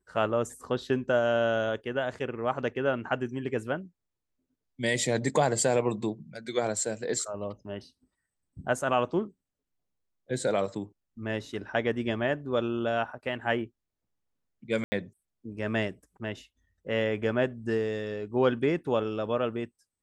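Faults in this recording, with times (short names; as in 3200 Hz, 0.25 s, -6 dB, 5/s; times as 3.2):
14.84–14.92 gap 80 ms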